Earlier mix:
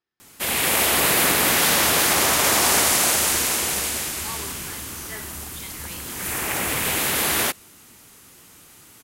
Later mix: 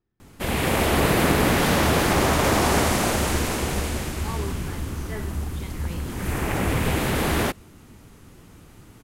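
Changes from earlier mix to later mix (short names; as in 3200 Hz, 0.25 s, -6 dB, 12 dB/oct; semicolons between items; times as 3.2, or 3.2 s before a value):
speech: add low shelf 360 Hz +9 dB; master: add tilt -3.5 dB/oct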